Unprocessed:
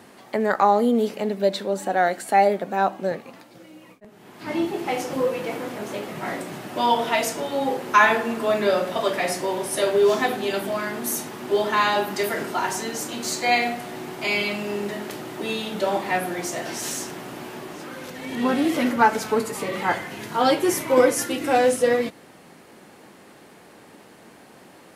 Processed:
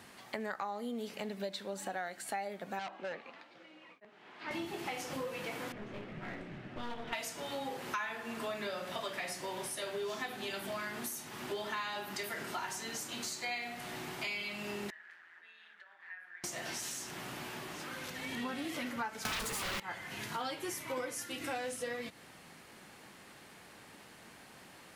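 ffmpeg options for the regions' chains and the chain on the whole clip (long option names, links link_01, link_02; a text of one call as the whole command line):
ffmpeg -i in.wav -filter_complex "[0:a]asettb=1/sr,asplit=3[link_01][link_02][link_03];[link_01]atrim=end=2.794[link_04];[link_02]atrim=start=2.79:end=4.51,asetpts=PTS-STARTPTS,afade=type=in:duration=0.004:curve=qsin,afade=type=out:start_time=1.716:duration=0.004:curve=qsin,acrossover=split=270 3900:gain=0.178 1 0.2[link_05][link_06][link_07];[link_05][link_06][link_07]amix=inputs=3:normalize=0,asoftclip=type=hard:threshold=-24dB,highpass=110,lowpass=6700[link_08];[link_03]atrim=start=4.506[link_09];[link_04][link_08]acrossfade=duration=0.004:curve1=hsin:curve2=qsin[link_10];[link_10][link_09]acrossfade=duration=0.004:curve1=qsin:curve2=hsin,asettb=1/sr,asplit=3[link_11][link_12][link_13];[link_11]atrim=end=5.724[link_14];[link_12]atrim=start=5.72:end=7.13,asetpts=PTS-STARTPTS,afade=type=in:duration=0.004:curve=qsin,afade=type=out:start_time=1.406:duration=0.004:curve=qsin,lowpass=1700,equalizer=frequency=960:width=1.1:gain=-11.5,aeval=exprs='clip(val(0),-1,0.0188)':channel_layout=same[link_15];[link_13]atrim=start=7.126[link_16];[link_14][link_15]acrossfade=duration=0.004:curve1=hsin:curve2=qsin[link_17];[link_17][link_16]acrossfade=duration=0.004:curve1=qsin:curve2=hsin,asettb=1/sr,asplit=3[link_18][link_19][link_20];[link_18]atrim=end=14.904[link_21];[link_19]atrim=start=14.9:end=16.44,asetpts=PTS-STARTPTS,afade=type=in:duration=0.004:curve=qsin,afade=type=out:start_time=1.536:duration=0.004:curve=qsin,acompressor=threshold=-28dB:ratio=6:attack=3.2:release=140:knee=1:detection=peak,tremolo=f=170:d=0.571,bandpass=frequency=1700:width_type=q:width=7.9[link_22];[link_20]atrim=start=16.436[link_23];[link_21][link_22]acrossfade=duration=0.004:curve1=hsin:curve2=qsin[link_24];[link_24][link_23]acrossfade=duration=0.004:curve1=qsin:curve2=hsin,asettb=1/sr,asplit=3[link_25][link_26][link_27];[link_25]atrim=end=19.254[link_28];[link_26]atrim=start=19.25:end=19.8,asetpts=PTS-STARTPTS,afade=type=in:duration=0.004:curve=qsin,afade=type=out:start_time=0.546:duration=0.004:curve=qsin,aeval=exprs='0.316*sin(PI/2*7.94*val(0)/0.316)':channel_layout=same,acrusher=bits=2:mode=log:mix=0:aa=0.000001[link_29];[link_27]atrim=start=19.796[link_30];[link_28][link_29]acrossfade=duration=0.004:curve1=hsin:curve2=qsin[link_31];[link_31][link_30]acrossfade=duration=0.004:curve1=qsin:curve2=hsin,equalizer=frequency=380:width=0.39:gain=-11.5,acompressor=threshold=-36dB:ratio=6,highshelf=frequency=5300:gain=-4.5" out.wav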